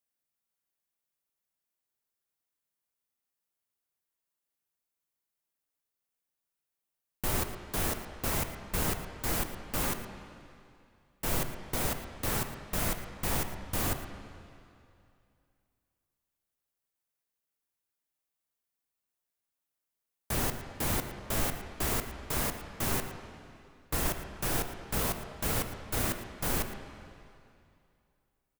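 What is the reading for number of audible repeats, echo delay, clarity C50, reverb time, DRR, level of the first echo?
1, 113 ms, 7.0 dB, 2.5 s, 6.5 dB, −15.0 dB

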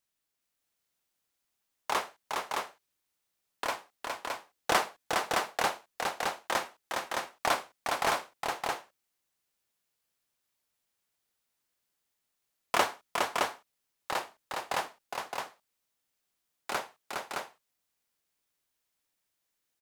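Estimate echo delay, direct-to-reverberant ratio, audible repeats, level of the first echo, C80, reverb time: 412 ms, no reverb audible, 2, −4.0 dB, no reverb audible, no reverb audible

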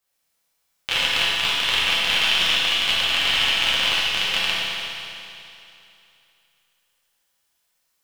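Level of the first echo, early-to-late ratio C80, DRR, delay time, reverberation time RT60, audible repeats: no echo audible, −2.0 dB, −9.0 dB, no echo audible, 2.8 s, no echo audible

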